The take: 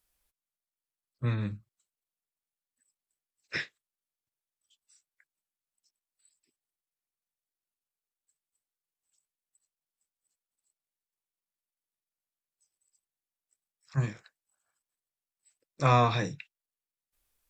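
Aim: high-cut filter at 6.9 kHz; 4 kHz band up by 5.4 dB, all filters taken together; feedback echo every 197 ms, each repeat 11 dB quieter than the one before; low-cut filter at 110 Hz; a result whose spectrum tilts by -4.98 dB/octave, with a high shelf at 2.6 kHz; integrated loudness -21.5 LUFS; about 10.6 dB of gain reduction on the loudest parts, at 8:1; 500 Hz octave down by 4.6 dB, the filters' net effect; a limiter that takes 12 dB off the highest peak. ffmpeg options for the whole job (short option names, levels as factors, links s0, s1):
-af "highpass=110,lowpass=6900,equalizer=f=500:t=o:g=-6,highshelf=f=2600:g=4,equalizer=f=4000:t=o:g=3.5,acompressor=threshold=0.0316:ratio=8,alimiter=level_in=2.37:limit=0.0631:level=0:latency=1,volume=0.422,aecho=1:1:197|394|591:0.282|0.0789|0.0221,volume=13.3"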